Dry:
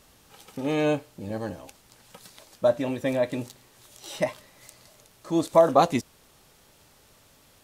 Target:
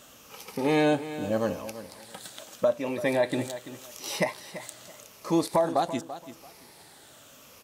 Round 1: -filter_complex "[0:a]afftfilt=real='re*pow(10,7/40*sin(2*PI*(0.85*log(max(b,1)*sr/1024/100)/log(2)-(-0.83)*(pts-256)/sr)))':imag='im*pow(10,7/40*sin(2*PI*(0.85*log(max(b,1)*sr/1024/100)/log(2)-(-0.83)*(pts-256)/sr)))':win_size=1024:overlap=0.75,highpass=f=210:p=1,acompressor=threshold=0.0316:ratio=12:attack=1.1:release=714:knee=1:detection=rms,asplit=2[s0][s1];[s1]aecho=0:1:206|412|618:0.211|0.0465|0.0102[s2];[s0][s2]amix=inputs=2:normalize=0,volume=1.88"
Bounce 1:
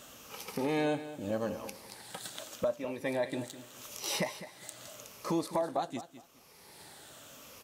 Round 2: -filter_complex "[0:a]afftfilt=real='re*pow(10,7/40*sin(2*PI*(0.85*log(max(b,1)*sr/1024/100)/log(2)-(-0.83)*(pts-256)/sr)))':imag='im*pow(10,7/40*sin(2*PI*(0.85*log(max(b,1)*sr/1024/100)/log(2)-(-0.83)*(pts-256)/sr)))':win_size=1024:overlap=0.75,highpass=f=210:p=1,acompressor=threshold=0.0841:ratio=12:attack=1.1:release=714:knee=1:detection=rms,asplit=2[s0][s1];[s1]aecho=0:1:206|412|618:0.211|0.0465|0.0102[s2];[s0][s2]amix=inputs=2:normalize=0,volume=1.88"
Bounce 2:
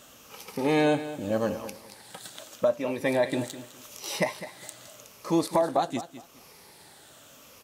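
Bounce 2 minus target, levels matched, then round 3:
echo 131 ms early
-filter_complex "[0:a]afftfilt=real='re*pow(10,7/40*sin(2*PI*(0.85*log(max(b,1)*sr/1024/100)/log(2)-(-0.83)*(pts-256)/sr)))':imag='im*pow(10,7/40*sin(2*PI*(0.85*log(max(b,1)*sr/1024/100)/log(2)-(-0.83)*(pts-256)/sr)))':win_size=1024:overlap=0.75,highpass=f=210:p=1,acompressor=threshold=0.0841:ratio=12:attack=1.1:release=714:knee=1:detection=rms,asplit=2[s0][s1];[s1]aecho=0:1:337|674|1011:0.211|0.0465|0.0102[s2];[s0][s2]amix=inputs=2:normalize=0,volume=1.88"

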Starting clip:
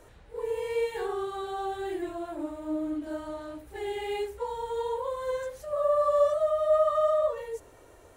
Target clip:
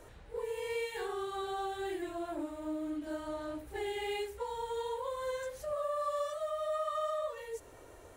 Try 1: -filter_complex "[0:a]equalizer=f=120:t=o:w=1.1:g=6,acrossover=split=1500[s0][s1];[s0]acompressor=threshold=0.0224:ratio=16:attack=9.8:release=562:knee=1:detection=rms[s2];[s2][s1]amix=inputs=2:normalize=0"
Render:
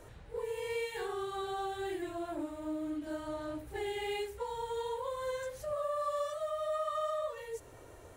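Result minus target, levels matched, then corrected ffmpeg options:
125 Hz band +3.5 dB
-filter_complex "[0:a]acrossover=split=1500[s0][s1];[s0]acompressor=threshold=0.0224:ratio=16:attack=9.8:release=562:knee=1:detection=rms[s2];[s2][s1]amix=inputs=2:normalize=0"

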